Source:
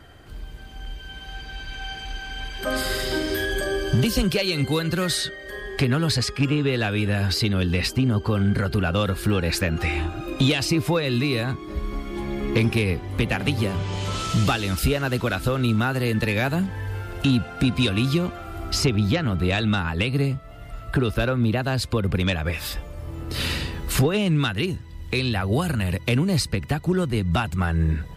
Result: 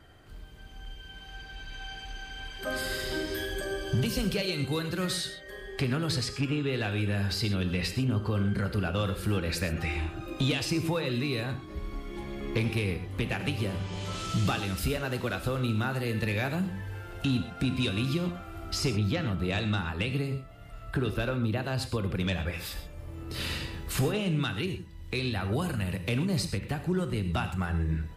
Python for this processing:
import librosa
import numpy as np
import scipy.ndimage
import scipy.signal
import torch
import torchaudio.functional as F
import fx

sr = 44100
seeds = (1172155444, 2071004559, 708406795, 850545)

y = fx.rev_gated(x, sr, seeds[0], gate_ms=150, shape='flat', drr_db=7.5)
y = y * 10.0 ** (-8.0 / 20.0)